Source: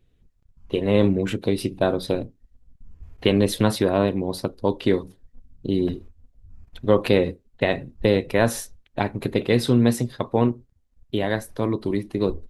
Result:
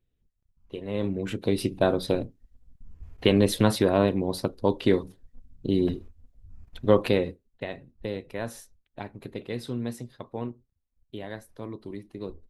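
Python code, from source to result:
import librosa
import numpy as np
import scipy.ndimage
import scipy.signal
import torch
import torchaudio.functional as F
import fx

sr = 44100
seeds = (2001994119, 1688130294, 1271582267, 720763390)

y = fx.gain(x, sr, db=fx.line((0.87, -13.0), (1.57, -1.5), (6.93, -1.5), (7.7, -14.0)))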